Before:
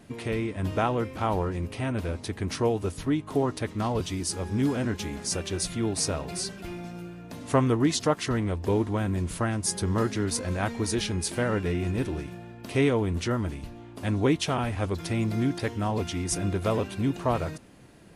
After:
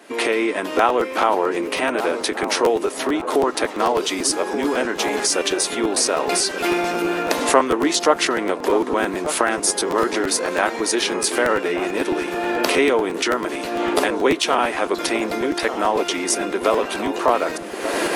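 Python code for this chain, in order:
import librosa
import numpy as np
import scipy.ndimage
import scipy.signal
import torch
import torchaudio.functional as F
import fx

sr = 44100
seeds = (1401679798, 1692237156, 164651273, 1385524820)

p1 = fx.recorder_agc(x, sr, target_db=-17.5, rise_db_per_s=46.0, max_gain_db=30)
p2 = scipy.signal.sosfilt(scipy.signal.butter(4, 320.0, 'highpass', fs=sr, output='sos'), p1)
p3 = fx.peak_eq(p2, sr, hz=1400.0, db=3.5, octaves=2.0)
p4 = p3 + fx.echo_wet_lowpass(p3, sr, ms=1182, feedback_pct=49, hz=1100.0, wet_db=-9, dry=0)
p5 = fx.buffer_crackle(p4, sr, first_s=0.77, period_s=0.11, block=512, kind='repeat')
y = F.gain(torch.from_numpy(p5), 7.5).numpy()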